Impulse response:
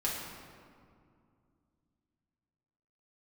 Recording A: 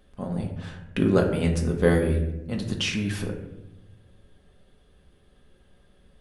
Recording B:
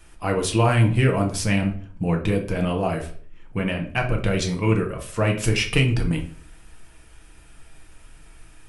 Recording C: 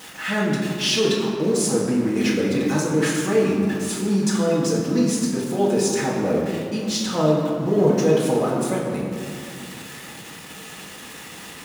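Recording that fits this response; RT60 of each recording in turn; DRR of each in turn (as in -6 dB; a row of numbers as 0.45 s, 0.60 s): C; 0.95 s, 0.50 s, 2.3 s; 0.5 dB, 1.5 dB, -6.0 dB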